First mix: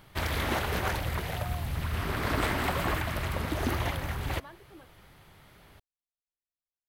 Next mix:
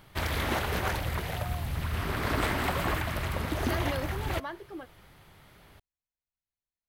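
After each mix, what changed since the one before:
second voice +10.5 dB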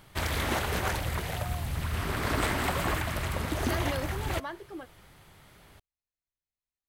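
master: add bell 7900 Hz +5.5 dB 0.93 oct

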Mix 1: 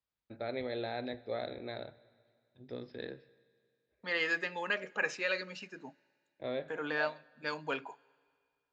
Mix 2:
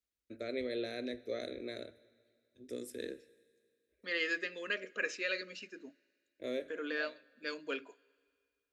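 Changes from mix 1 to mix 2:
first voice: remove rippled Chebyshev low-pass 5100 Hz, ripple 3 dB; master: add fixed phaser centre 350 Hz, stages 4

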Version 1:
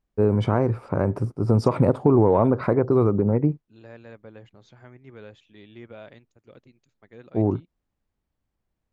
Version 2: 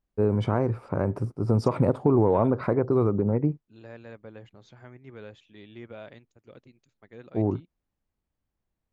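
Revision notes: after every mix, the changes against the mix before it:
first voice -3.5 dB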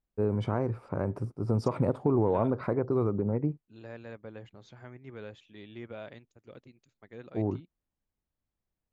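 first voice -5.0 dB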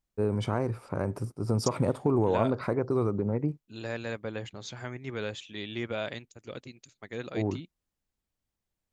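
second voice +8.0 dB; master: remove LPF 1500 Hz 6 dB/oct

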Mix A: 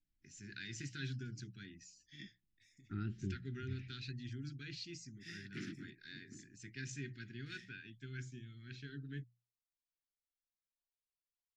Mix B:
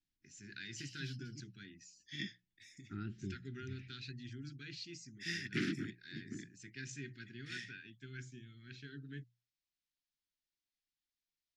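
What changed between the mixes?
background +11.0 dB; master: add low shelf 88 Hz -10 dB

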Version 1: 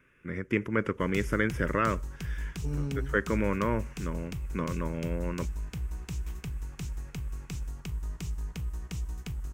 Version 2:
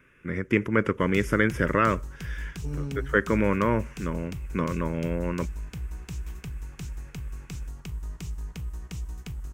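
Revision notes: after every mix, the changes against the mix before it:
first voice +5.0 dB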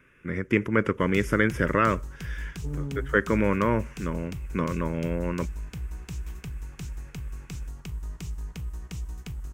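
second voice: add LPF 1200 Hz

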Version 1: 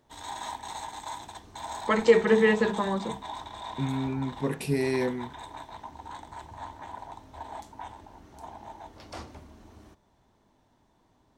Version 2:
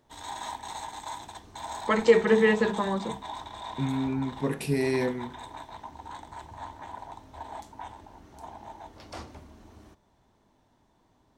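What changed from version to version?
reverb: on, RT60 0.60 s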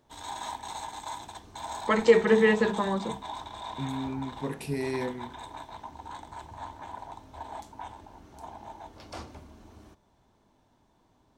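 second voice -5.0 dB; background: add notch 1900 Hz, Q 16

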